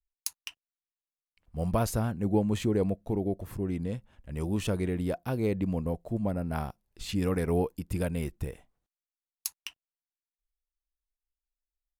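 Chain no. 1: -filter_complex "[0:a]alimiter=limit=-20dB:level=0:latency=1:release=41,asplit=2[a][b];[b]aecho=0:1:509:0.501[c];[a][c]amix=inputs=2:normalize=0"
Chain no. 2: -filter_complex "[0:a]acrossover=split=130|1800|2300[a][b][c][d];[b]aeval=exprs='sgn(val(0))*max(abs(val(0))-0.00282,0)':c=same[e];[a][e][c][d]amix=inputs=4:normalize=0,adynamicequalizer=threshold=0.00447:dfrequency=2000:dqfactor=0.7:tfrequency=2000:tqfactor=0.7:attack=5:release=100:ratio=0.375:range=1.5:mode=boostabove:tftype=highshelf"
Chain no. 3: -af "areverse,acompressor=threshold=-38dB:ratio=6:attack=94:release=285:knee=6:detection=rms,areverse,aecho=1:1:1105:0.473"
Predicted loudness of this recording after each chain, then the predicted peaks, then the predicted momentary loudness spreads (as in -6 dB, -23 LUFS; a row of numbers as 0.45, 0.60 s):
-31.5, -32.0, -40.5 LUFS; -16.5, -11.0, -16.5 dBFS; 18, 13, 9 LU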